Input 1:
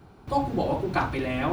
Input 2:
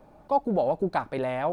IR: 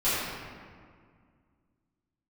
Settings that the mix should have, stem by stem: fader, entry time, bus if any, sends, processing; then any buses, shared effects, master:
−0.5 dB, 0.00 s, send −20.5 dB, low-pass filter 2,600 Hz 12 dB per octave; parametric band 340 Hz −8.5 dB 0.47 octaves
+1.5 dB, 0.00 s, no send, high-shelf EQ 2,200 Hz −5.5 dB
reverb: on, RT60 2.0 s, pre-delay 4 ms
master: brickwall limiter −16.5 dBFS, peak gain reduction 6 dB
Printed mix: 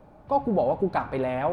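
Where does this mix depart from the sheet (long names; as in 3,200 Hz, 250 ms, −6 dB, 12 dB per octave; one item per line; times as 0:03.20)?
stem 1 −0.5 dB → −10.5 dB
master: missing brickwall limiter −16.5 dBFS, peak gain reduction 6 dB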